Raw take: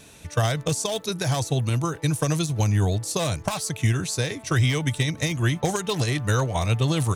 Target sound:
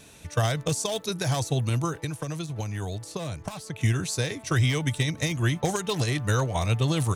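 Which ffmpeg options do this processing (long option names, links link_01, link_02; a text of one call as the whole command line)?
ffmpeg -i in.wav -filter_complex "[0:a]asettb=1/sr,asplit=3[link_01][link_02][link_03];[link_01]atrim=end=2.044[link_04];[link_02]atrim=start=2.04:end=3.81,asetpts=PTS-STARTPTS,afade=type=in:duration=0.004:curve=qsin,afade=type=out:start_time=1.766:duration=0.004:curve=qsin,acrossover=split=400|3400[link_05][link_06][link_07];[link_05]acompressor=threshold=-30dB:ratio=4[link_08];[link_06]acompressor=threshold=-35dB:ratio=4[link_09];[link_07]acompressor=threshold=-44dB:ratio=4[link_10];[link_08][link_09][link_10]amix=inputs=3:normalize=0[link_11];[link_03]atrim=start=3.806[link_12];[link_04][link_11]acrossfade=duration=0.004:curve1=hsin:curve2=qsin[link_13];[link_13][link_12]acrossfade=duration=0.004:curve1=qsin:curve2=hsin,volume=-2dB" out.wav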